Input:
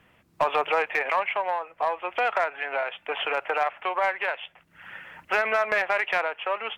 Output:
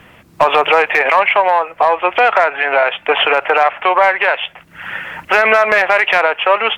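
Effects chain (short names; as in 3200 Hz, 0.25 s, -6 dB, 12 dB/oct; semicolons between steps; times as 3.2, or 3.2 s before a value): 1.86–4.32 high shelf 5300 Hz -4.5 dB; maximiser +18 dB; gain -1 dB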